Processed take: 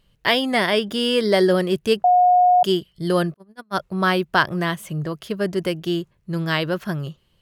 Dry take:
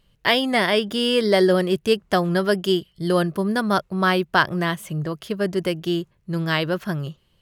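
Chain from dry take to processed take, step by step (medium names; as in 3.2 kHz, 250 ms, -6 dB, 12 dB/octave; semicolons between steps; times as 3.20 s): 2.04–2.63 s: bleep 722 Hz -11 dBFS; 3.34–3.80 s: gate -17 dBFS, range -40 dB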